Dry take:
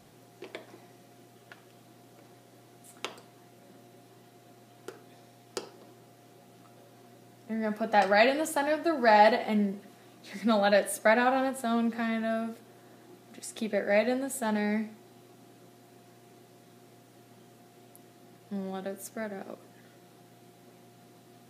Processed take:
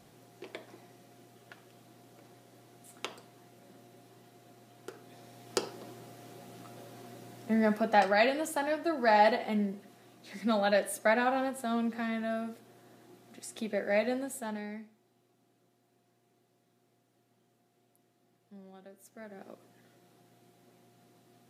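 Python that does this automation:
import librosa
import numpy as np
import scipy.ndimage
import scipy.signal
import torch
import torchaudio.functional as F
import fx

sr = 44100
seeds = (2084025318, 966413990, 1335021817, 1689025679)

y = fx.gain(x, sr, db=fx.line((4.9, -2.0), (5.58, 5.5), (7.58, 5.5), (8.15, -3.5), (14.24, -3.5), (14.9, -16.0), (18.99, -16.0), (19.45, -7.0)))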